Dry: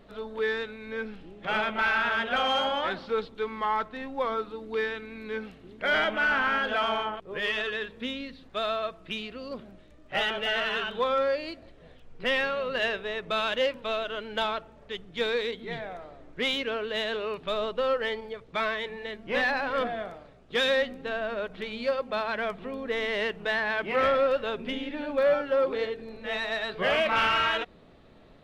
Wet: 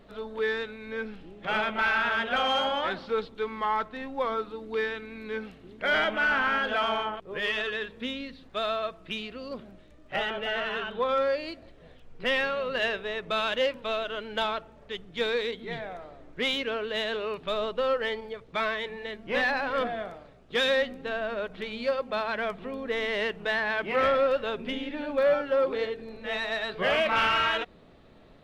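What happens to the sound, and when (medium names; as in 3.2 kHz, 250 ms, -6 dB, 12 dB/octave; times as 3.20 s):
10.16–11.09 s: treble shelf 2.9 kHz -9.5 dB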